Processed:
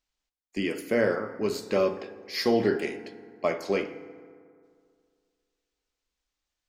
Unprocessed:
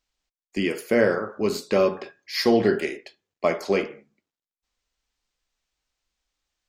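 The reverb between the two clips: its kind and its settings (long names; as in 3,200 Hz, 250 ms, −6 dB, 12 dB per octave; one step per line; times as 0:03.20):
feedback delay network reverb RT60 2.2 s, low-frequency decay 1×, high-frequency decay 0.45×, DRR 11.5 dB
level −4.5 dB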